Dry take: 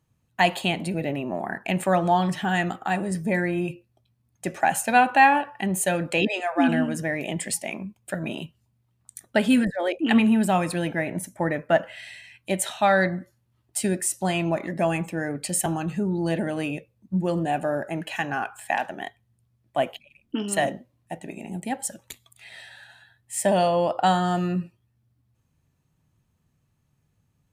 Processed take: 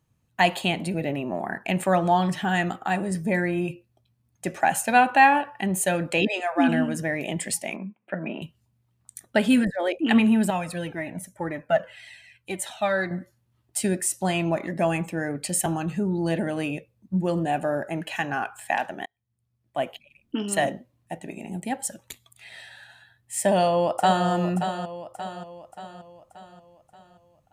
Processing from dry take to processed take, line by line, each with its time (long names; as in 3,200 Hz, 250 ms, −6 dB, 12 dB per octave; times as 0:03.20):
0:07.76–0:08.42: elliptic band-pass filter 180–2,500 Hz
0:10.50–0:13.11: flanger whose copies keep moving one way falling 1.9 Hz
0:19.06–0:20.60: fade in equal-power
0:23.40–0:24.27: delay throw 580 ms, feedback 50%, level −8.5 dB